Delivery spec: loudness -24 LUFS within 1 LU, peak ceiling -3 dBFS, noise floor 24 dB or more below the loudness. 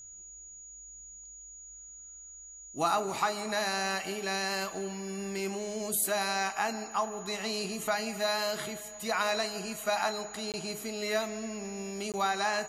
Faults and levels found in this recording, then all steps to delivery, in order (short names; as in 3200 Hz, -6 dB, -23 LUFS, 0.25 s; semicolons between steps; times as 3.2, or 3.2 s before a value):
dropouts 2; longest dropout 18 ms; steady tone 6800 Hz; tone level -46 dBFS; loudness -32.0 LUFS; peak -15.5 dBFS; loudness target -24.0 LUFS
-> interpolate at 10.52/12.12, 18 ms; notch 6800 Hz, Q 30; gain +8 dB